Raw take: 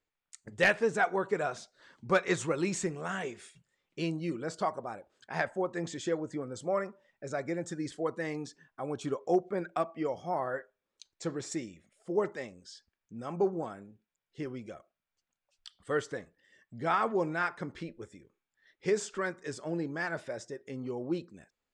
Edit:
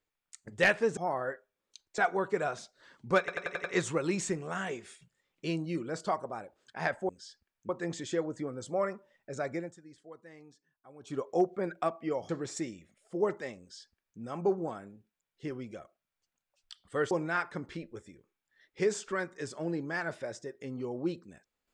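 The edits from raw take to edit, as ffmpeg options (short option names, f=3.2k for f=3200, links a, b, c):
-filter_complex "[0:a]asplit=14[a][b][c][d][e][f][g][h][i][j][k][l][m][n];[a]atrim=end=0.972[o];[b]atrim=start=10.228:end=11.242[p];[c]atrim=start=0.968:end=2.272[q];[d]atrim=start=2.178:end=2.272[r];[e]atrim=start=2.178:end=2.272[s];[f]atrim=start=2.178:end=2.272[t];[g]atrim=start=2.178:end=2.272[u];[h]atrim=start=2.178:end=5.632[v];[i]atrim=start=12.548:end=13.152[w];[j]atrim=start=5.628:end=7.7,asetpts=PTS-STARTPTS,afade=t=out:st=1.842:d=0.23:silence=0.141254[x];[k]atrim=start=7.7:end=8.93,asetpts=PTS-STARTPTS,volume=-17dB[y];[l]atrim=start=8.93:end=10.232,asetpts=PTS-STARTPTS,afade=t=in:d=0.23:silence=0.141254[z];[m]atrim=start=11.238:end=16.062[aa];[n]atrim=start=17.168[ab];[o][p]acrossfade=d=0.004:c1=hsin:c2=hsin[ac];[ac][q]acrossfade=d=0.004:c1=hsin:c2=hsin[ad];[ad][r]acrossfade=d=0.004:c1=hsin:c2=hsin[ae];[ae][s]acrossfade=d=0.004:c1=hsin:c2=hsin[af];[af][t]acrossfade=d=0.004:c1=hsin:c2=hsin[ag];[ag][u]acrossfade=d=0.004:c1=hsin:c2=hsin[ah];[ah][v]acrossfade=d=0.004:c1=hsin:c2=hsin[ai];[ai][w]acrossfade=d=0.004:c1=hsin:c2=hsin[aj];[x][y][z]concat=n=3:v=0:a=1[ak];[aj][ak]acrossfade=d=0.004:c1=hsin:c2=hsin[al];[al][aa]acrossfade=d=0.004:c1=hsin:c2=hsin[am];[am][ab]acrossfade=d=0.004:c1=hsin:c2=hsin"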